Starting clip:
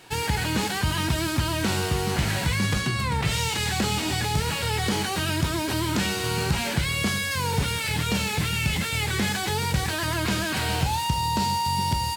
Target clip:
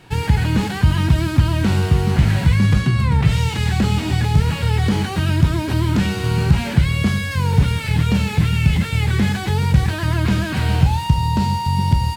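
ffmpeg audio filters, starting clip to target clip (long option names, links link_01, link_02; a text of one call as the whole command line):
ffmpeg -i in.wav -af "bass=frequency=250:gain=11,treble=frequency=4000:gain=-7,volume=1.5dB" out.wav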